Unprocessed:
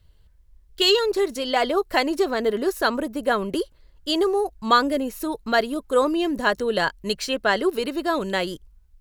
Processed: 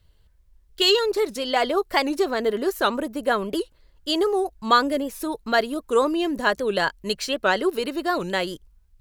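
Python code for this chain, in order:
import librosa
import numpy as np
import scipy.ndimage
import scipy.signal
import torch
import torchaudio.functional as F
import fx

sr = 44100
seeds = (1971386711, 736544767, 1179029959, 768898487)

y = fx.low_shelf(x, sr, hz=190.0, db=-3.5)
y = fx.record_warp(y, sr, rpm=78.0, depth_cents=160.0)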